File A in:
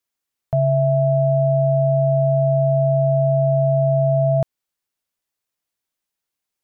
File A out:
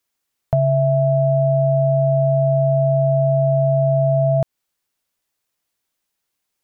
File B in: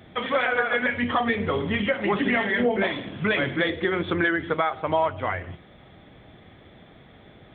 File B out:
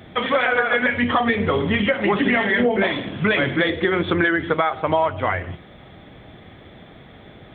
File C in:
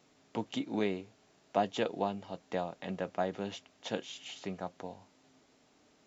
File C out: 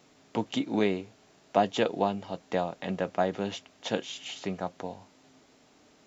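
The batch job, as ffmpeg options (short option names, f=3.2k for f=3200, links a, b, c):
-af "acompressor=threshold=-20dB:ratio=4,volume=6dB"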